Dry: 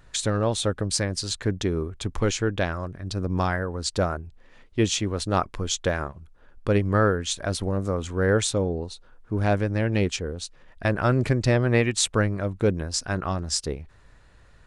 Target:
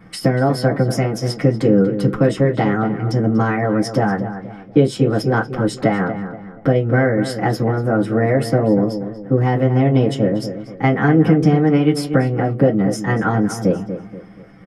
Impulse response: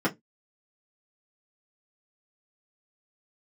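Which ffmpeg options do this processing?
-filter_complex "[0:a]acompressor=threshold=-25dB:ratio=6,asetrate=53981,aresample=44100,atempo=0.816958,asplit=2[a][b];[b]adelay=239,lowpass=f=2.3k:p=1,volume=-10dB,asplit=2[c][d];[d]adelay=239,lowpass=f=2.3k:p=1,volume=0.38,asplit=2[e][f];[f]adelay=239,lowpass=f=2.3k:p=1,volume=0.38,asplit=2[g][h];[h]adelay=239,lowpass=f=2.3k:p=1,volume=0.38[i];[a][c][e][g][i]amix=inputs=5:normalize=0[j];[1:a]atrim=start_sample=2205[k];[j][k]afir=irnorm=-1:irlink=0,volume=-1.5dB"

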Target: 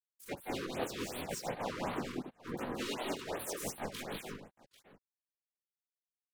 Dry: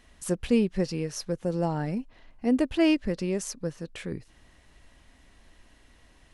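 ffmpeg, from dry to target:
-filter_complex "[0:a]highpass=f=380:p=1,aecho=1:1:7.5:0.8,areverse,acompressor=threshold=-37dB:ratio=6,areverse,acrusher=bits=5:mix=0:aa=0.5,afftfilt=real='hypot(re,im)*cos(2*PI*random(0))':imag='hypot(re,im)*sin(2*PI*random(1))':win_size=512:overlap=0.75,asplit=4[a][b][c][d];[b]asetrate=35002,aresample=44100,atempo=1.25992,volume=-15dB[e];[c]asetrate=58866,aresample=44100,atempo=0.749154,volume=-1dB[f];[d]asetrate=66075,aresample=44100,atempo=0.66742,volume=-3dB[g];[a][e][f][g]amix=inputs=4:normalize=0,asplit=2[h][i];[i]aecho=0:1:48|169|177|201|278|793:0.133|0.2|0.596|0.708|0.335|0.126[j];[h][j]amix=inputs=2:normalize=0,afftfilt=real='re*(1-between(b*sr/1024,660*pow(6700/660,0.5+0.5*sin(2*PI*2.7*pts/sr))/1.41,660*pow(6700/660,0.5+0.5*sin(2*PI*2.7*pts/sr))*1.41))':imag='im*(1-between(b*sr/1024,660*pow(6700/660,0.5+0.5*sin(2*PI*2.7*pts/sr))/1.41,660*pow(6700/660,0.5+0.5*sin(2*PI*2.7*pts/sr))*1.41))':win_size=1024:overlap=0.75,volume=1.5dB"

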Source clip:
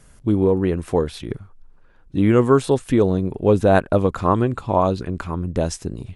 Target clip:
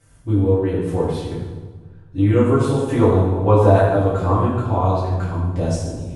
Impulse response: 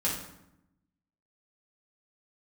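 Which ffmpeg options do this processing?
-filter_complex "[0:a]asettb=1/sr,asplit=3[a][b][c];[a]atrim=end=2.884[d];[b]atrim=start=2.88:end=3.69,asetpts=PTS-STARTPTS,afade=t=in:d=0.004:c=qsin,afade=t=out:st=0.806:d=0.004:c=qsin,equalizer=f=1k:w=1.1:g=13[e];[c]atrim=start=3.686[f];[d][e]acrossfade=d=0.004:c1=hsin:c2=qsin[g];[g][f]acrossfade=d=0.004:c1=qsin:c2=hsin[h];[1:a]atrim=start_sample=2205,asetrate=24255,aresample=44100[i];[h][i]afir=irnorm=-1:irlink=0,volume=-13dB"

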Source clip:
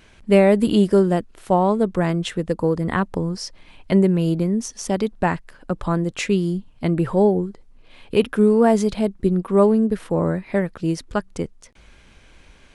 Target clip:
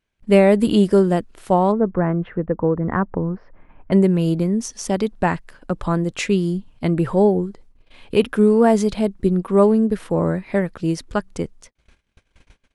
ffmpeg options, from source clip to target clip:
-filter_complex "[0:a]agate=range=-28dB:threshold=-45dB:ratio=16:detection=peak,asplit=3[a][b][c];[a]afade=t=out:st=1.71:d=0.02[d];[b]lowpass=f=1.7k:w=0.5412,lowpass=f=1.7k:w=1.3066,afade=t=in:st=1.71:d=0.02,afade=t=out:st=3.91:d=0.02[e];[c]afade=t=in:st=3.91:d=0.02[f];[d][e][f]amix=inputs=3:normalize=0,volume=1dB"

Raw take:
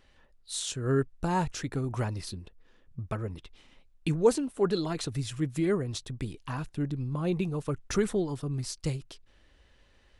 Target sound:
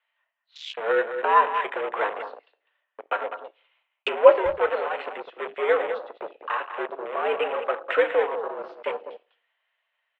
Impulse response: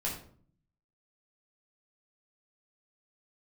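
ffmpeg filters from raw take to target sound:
-filter_complex "[0:a]asettb=1/sr,asplit=3[a][b][c];[a]atrim=end=4.534[d];[b]atrim=start=4.53:end=5.69,asetpts=PTS-STARTPTS,afade=t=in:d=0.004:c=qsin,afade=t=out:st=1.156:d=0.004:c=qsin,aeval=exprs='(tanh(15.8*val(0)+0.3)-tanh(0.3))/15.8':c=same[e];[c]atrim=start=5.686[f];[d][e]acrossfade=d=0.004:c1=hsin:c2=qsin[g];[g][f]acrossfade=d=0.004:c1=qsin:c2=hsin,aemphasis=mode=production:type=50kf,acrossover=split=590[h][i];[h]aeval=exprs='val(0)*gte(abs(val(0)),0.0316)':c=same[j];[i]dynaudnorm=f=230:g=9:m=4dB[k];[j][k]amix=inputs=2:normalize=0,highpass=f=360:t=q:w=0.5412,highpass=f=360:t=q:w=1.307,lowpass=f=3k:t=q:w=0.5176,lowpass=f=3k:t=q:w=0.7071,lowpass=f=3k:t=q:w=1.932,afreqshift=89,asplit=2[l][m];[m]adelay=200,highpass=300,lowpass=3.4k,asoftclip=type=hard:threshold=-18dB,volume=-9dB[n];[l][n]amix=inputs=2:normalize=0,asplit=2[o][p];[1:a]atrim=start_sample=2205,lowpass=4.4k[q];[p][q]afir=irnorm=-1:irlink=0,volume=-9.5dB[r];[o][r]amix=inputs=2:normalize=0,afwtdn=0.01,volume=5.5dB"

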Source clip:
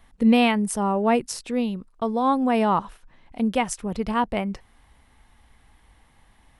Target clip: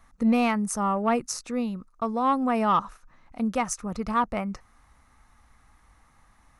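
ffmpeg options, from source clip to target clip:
-af "equalizer=f=400:t=o:w=0.33:g=-5,equalizer=f=1.25k:t=o:w=0.33:g=11,equalizer=f=3.15k:t=o:w=0.33:g=-9,equalizer=f=6.3k:t=o:w=0.33:g=8,asoftclip=type=tanh:threshold=-10dB,volume=-3dB"

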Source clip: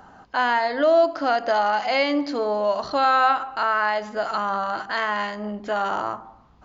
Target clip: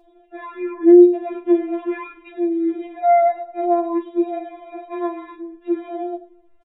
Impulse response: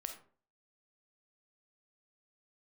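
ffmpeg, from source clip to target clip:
-filter_complex "[0:a]acrossover=split=260[a][b];[a]acompressor=threshold=-42dB:ratio=2[c];[c][b]amix=inputs=2:normalize=0,equalizer=f=190:w=1:g=11,asetrate=23361,aresample=44100,atempo=1.88775,asplit=2[d][e];[1:a]atrim=start_sample=2205,adelay=40[f];[e][f]afir=irnorm=-1:irlink=0,volume=-9.5dB[g];[d][g]amix=inputs=2:normalize=0,afftfilt=real='re*4*eq(mod(b,16),0)':imag='im*4*eq(mod(b,16),0)':win_size=2048:overlap=0.75,volume=-1dB"

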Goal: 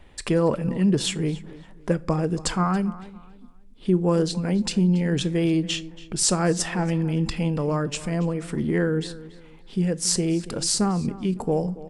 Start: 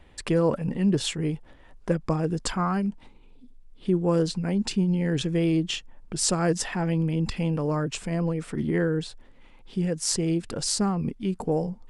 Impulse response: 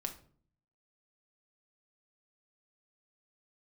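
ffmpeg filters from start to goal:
-filter_complex "[0:a]asplit=2[a][b];[b]adelay=280,lowpass=f=3.7k:p=1,volume=-17dB,asplit=2[c][d];[d]adelay=280,lowpass=f=3.7k:p=1,volume=0.3,asplit=2[e][f];[f]adelay=280,lowpass=f=3.7k:p=1,volume=0.3[g];[a][c][e][g]amix=inputs=4:normalize=0,asplit=2[h][i];[1:a]atrim=start_sample=2205,highshelf=f=4.9k:g=8.5[j];[i][j]afir=irnorm=-1:irlink=0,volume=-9.5dB[k];[h][k]amix=inputs=2:normalize=0"

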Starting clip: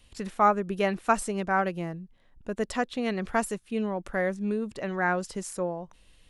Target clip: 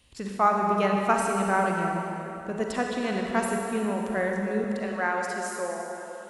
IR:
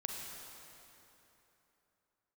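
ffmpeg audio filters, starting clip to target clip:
-filter_complex "[0:a]asetnsamples=n=441:p=0,asendcmd='4.64 highpass f 440',highpass=52[a];[1:a]atrim=start_sample=2205[b];[a][b]afir=irnorm=-1:irlink=0,volume=1.5dB"

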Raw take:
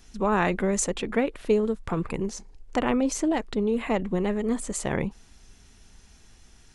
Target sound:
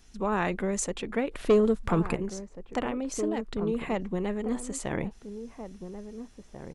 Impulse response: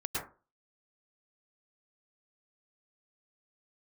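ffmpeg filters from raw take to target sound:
-filter_complex "[0:a]asettb=1/sr,asplit=3[a][b][c];[a]atrim=end=1.314[d];[b]atrim=start=1.31:end=2.15,asetpts=PTS-STARTPTS,afade=t=in:d=0.004:c=qsin,afade=t=out:st=0.836:d=0.004:c=qsin,aeval=exprs='0.299*sin(PI/2*1.58*val(0)/0.299)':c=same[e];[c]atrim=start=2.146[f];[d][e]acrossfade=d=0.004:c1=hsin:c2=qsin[g];[g][f]acrossfade=d=0.004:c1=qsin:c2=hsin,asettb=1/sr,asplit=3[h][i][j];[h]atrim=end=2.854[k];[i]atrim=start=2.85:end=3.59,asetpts=PTS-STARTPTS,afade=t=in:d=0.004:c=qsin,afade=t=out:st=0.736:d=0.004:c=qsin,acompressor=threshold=-24dB:ratio=6[l];[j]atrim=start=3.586[m];[k][l]acrossfade=d=0.004:c1=hsin:c2=qsin[n];[n][m]acrossfade=d=0.004:c1=qsin:c2=hsin,asplit=2[o][p];[p]adelay=1691,volume=-10dB,highshelf=f=4k:g=-38[q];[o][q]amix=inputs=2:normalize=0,volume=-4.5dB"

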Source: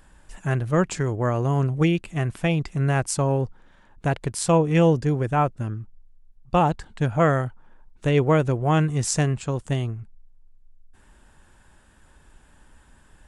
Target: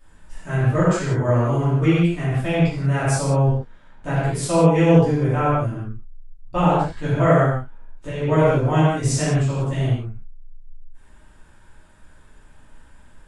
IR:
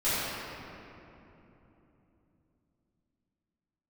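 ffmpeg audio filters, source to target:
-filter_complex "[0:a]asettb=1/sr,asplit=3[a][b][c];[a]atrim=end=7.404[d];[b]atrim=start=7.4:end=8.26,asetpts=PTS-STARTPTS,afade=t=in:d=0.004:c=qsin,afade=t=out:st=0.856:d=0.004:c=qsin,acompressor=threshold=-24dB:ratio=6[e];[c]atrim=start=8.256[f];[d][e]acrossfade=d=0.004:c1=hsin:c2=qsin[g];[g][f]acrossfade=d=0.004:c1=qsin:c2=hsin[h];[1:a]atrim=start_sample=2205,afade=t=out:st=0.25:d=0.01,atrim=end_sample=11466[i];[h][i]afir=irnorm=-1:irlink=0,volume=-8dB"

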